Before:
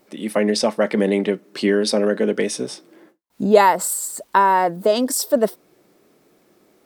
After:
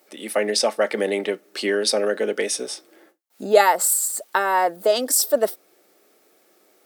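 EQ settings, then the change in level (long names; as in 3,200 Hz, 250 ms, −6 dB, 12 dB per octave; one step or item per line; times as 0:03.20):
high-pass filter 430 Hz 12 dB per octave
Butterworth band-reject 1,000 Hz, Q 7.1
high-shelf EQ 6,700 Hz +6 dB
0.0 dB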